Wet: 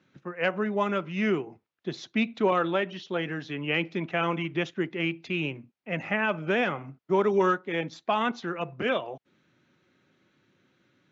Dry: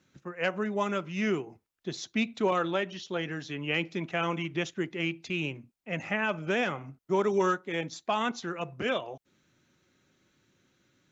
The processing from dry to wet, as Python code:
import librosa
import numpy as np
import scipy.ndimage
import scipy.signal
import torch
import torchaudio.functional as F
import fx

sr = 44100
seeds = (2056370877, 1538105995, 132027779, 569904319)

y = fx.bandpass_edges(x, sr, low_hz=110.0, high_hz=3500.0)
y = y * 10.0 ** (3.0 / 20.0)